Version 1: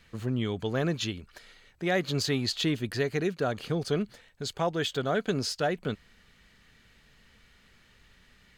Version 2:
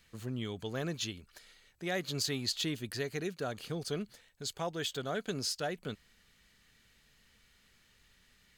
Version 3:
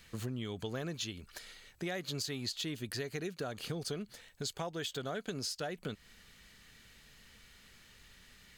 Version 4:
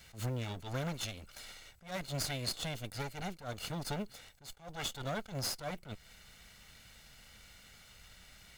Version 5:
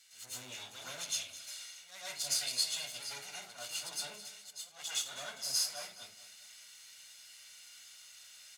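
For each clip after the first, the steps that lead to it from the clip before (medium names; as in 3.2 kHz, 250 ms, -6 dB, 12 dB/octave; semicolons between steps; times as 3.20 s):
treble shelf 4.6 kHz +11.5 dB; trim -8.5 dB
compression 6:1, threshold -43 dBFS, peak gain reduction 13 dB; trim +7 dB
comb filter that takes the minimum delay 1.4 ms; modulation noise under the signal 34 dB; attacks held to a fixed rise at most 180 dB/s; trim +3.5 dB
band-pass filter 7.5 kHz, Q 0.78; feedback delay 210 ms, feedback 41%, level -15 dB; reverberation RT60 0.35 s, pre-delay 106 ms, DRR -9 dB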